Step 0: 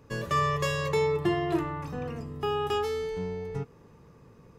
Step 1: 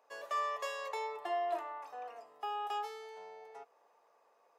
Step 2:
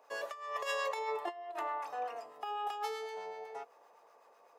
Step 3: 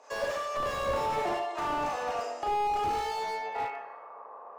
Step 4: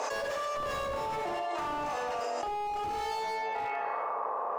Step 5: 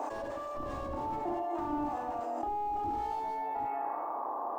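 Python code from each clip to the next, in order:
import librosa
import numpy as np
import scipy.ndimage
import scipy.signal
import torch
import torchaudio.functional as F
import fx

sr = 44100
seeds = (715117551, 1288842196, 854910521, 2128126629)

y1 = fx.ladder_highpass(x, sr, hz=630.0, resonance_pct=65)
y2 = fx.over_compress(y1, sr, threshold_db=-40.0, ratio=-0.5)
y2 = fx.harmonic_tremolo(y2, sr, hz=7.9, depth_pct=50, crossover_hz=910.0)
y2 = y2 * librosa.db_to_amplitude(6.0)
y3 = fx.filter_sweep_lowpass(y2, sr, from_hz=6800.0, to_hz=1100.0, start_s=2.89, end_s=4.07, q=2.7)
y3 = fx.rev_schroeder(y3, sr, rt60_s=0.84, comb_ms=29, drr_db=-3.0)
y3 = fx.slew_limit(y3, sr, full_power_hz=17.0)
y3 = y3 * librosa.db_to_amplitude(6.5)
y4 = fx.env_flatten(y3, sr, amount_pct=100)
y4 = y4 * librosa.db_to_amplitude(-6.5)
y5 = fx.curve_eq(y4, sr, hz=(100.0, 180.0, 310.0, 460.0, 780.0, 1300.0, 2500.0, 5000.0, 12000.0), db=(0, -7, 8, -13, -2, -12, -19, -23, -1))
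y5 = np.interp(np.arange(len(y5)), np.arange(len(y5))[::3], y5[::3])
y5 = y5 * librosa.db_to_amplitude(3.5)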